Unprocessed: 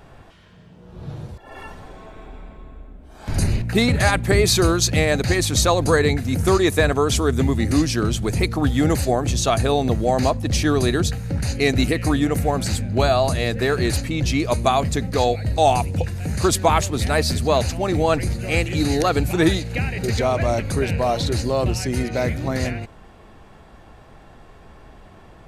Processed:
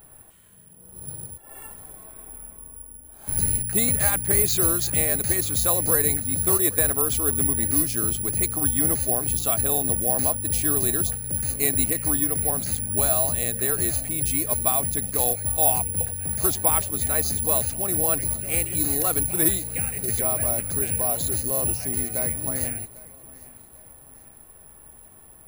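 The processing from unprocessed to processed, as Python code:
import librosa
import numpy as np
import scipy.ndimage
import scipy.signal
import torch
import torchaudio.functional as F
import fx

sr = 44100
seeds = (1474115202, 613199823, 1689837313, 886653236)

p1 = x + fx.echo_feedback(x, sr, ms=797, feedback_pct=46, wet_db=-21, dry=0)
p2 = (np.kron(scipy.signal.resample_poly(p1, 1, 4), np.eye(4)[0]) * 4)[:len(p1)]
y = F.gain(torch.from_numpy(p2), -10.0).numpy()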